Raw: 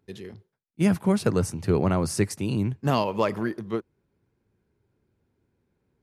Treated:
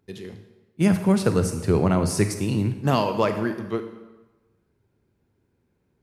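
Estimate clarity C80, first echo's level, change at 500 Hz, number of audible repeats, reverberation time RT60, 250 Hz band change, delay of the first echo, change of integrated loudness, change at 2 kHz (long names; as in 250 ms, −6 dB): 11.5 dB, no echo audible, +2.5 dB, no echo audible, 1.2 s, +2.5 dB, no echo audible, +2.5 dB, +2.5 dB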